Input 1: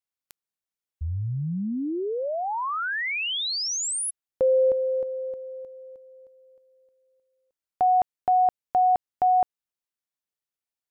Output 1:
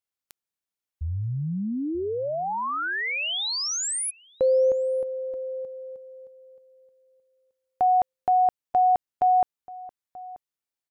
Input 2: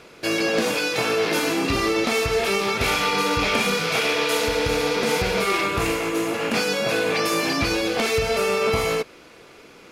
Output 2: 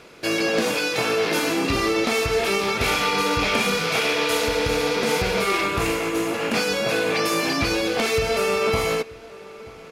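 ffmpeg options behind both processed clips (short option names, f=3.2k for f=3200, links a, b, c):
-filter_complex "[0:a]asplit=2[a][b];[b]adelay=932.9,volume=-19dB,highshelf=f=4k:g=-21[c];[a][c]amix=inputs=2:normalize=0"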